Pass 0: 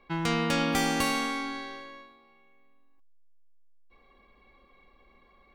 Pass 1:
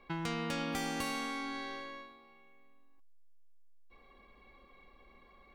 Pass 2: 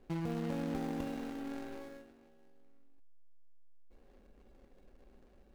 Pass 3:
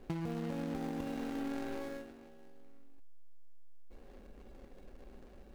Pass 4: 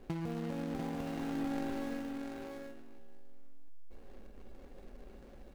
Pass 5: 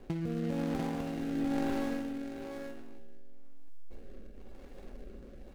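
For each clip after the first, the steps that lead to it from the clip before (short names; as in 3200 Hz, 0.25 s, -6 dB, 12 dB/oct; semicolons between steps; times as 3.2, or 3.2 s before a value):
compressor 2.5:1, threshold -38 dBFS, peak gain reduction 10.5 dB
median filter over 41 samples; gain +2.5 dB
compressor 12:1, threshold -42 dBFS, peak gain reduction 10.5 dB; gain +7.5 dB
echo 0.695 s -3.5 dB
rotary speaker horn 1 Hz; gain +5.5 dB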